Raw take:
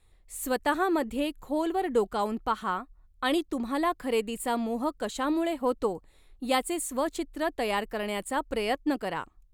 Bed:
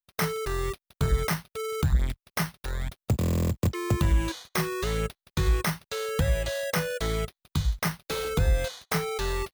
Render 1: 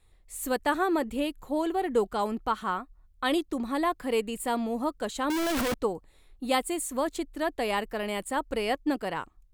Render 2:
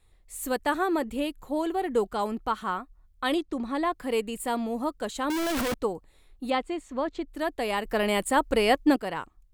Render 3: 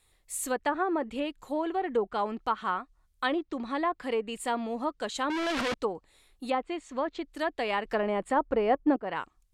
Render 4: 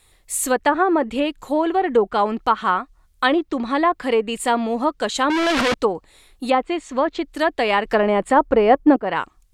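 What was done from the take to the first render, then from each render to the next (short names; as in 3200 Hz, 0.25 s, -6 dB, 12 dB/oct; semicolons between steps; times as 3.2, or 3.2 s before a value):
5.3–5.74 infinite clipping
3.34–3.93 air absorption 54 m; 6.5–7.28 air absorption 180 m; 7.85–8.96 gain +6.5 dB
treble ducked by the level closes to 980 Hz, closed at -21 dBFS; tilt +2 dB/oct
gain +11 dB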